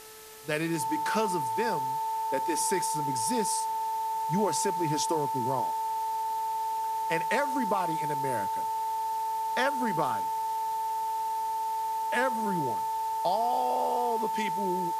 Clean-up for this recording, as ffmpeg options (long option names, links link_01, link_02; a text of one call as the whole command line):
ffmpeg -i in.wav -af "bandreject=frequency=436.4:width_type=h:width=4,bandreject=frequency=872.8:width_type=h:width=4,bandreject=frequency=1309.2:width_type=h:width=4,bandreject=frequency=1745.6:width_type=h:width=4,bandreject=frequency=890:width=30,afwtdn=0.004" out.wav